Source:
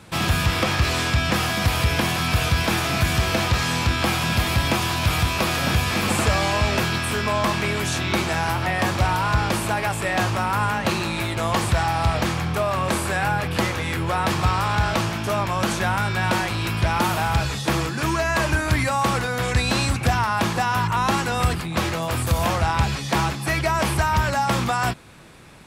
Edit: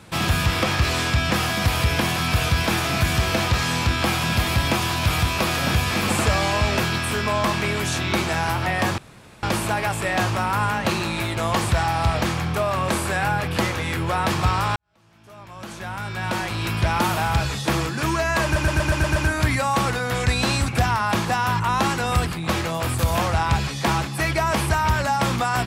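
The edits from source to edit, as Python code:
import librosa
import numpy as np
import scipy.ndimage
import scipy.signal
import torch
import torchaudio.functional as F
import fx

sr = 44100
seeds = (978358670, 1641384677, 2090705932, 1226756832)

y = fx.edit(x, sr, fx.room_tone_fill(start_s=8.98, length_s=0.45),
    fx.fade_in_span(start_s=14.76, length_s=1.96, curve='qua'),
    fx.stutter(start_s=18.44, slice_s=0.12, count=7), tone=tone)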